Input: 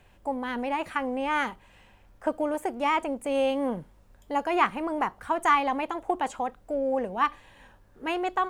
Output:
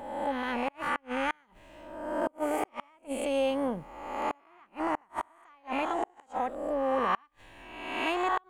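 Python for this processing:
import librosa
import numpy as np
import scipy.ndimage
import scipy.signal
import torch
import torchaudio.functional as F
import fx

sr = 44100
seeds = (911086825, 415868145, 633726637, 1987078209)

y = fx.spec_swells(x, sr, rise_s=1.16)
y = fx.gate_flip(y, sr, shuts_db=-14.0, range_db=-35)
y = y * 10.0 ** (-3.0 / 20.0)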